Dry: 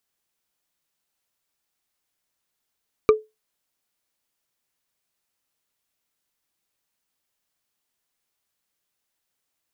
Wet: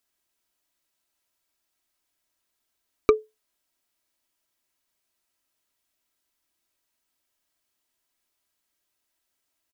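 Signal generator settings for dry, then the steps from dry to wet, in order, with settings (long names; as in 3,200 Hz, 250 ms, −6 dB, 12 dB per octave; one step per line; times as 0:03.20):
struck wood bar, lowest mode 432 Hz, decay 0.21 s, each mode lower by 6.5 dB, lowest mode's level −7 dB
comb filter 3.1 ms, depth 44%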